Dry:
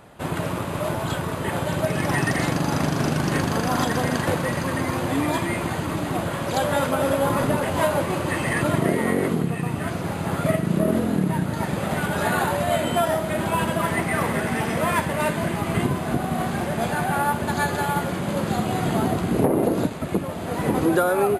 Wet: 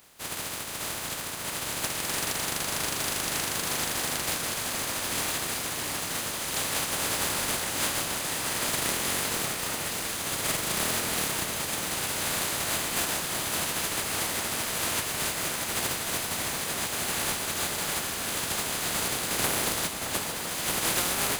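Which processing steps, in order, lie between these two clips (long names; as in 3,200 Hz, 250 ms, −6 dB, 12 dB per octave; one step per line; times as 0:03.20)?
compressing power law on the bin magnitudes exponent 0.18
on a send: delay that swaps between a low-pass and a high-pass 620 ms, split 2,000 Hz, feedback 88%, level −7 dB
on the sum: level −8 dB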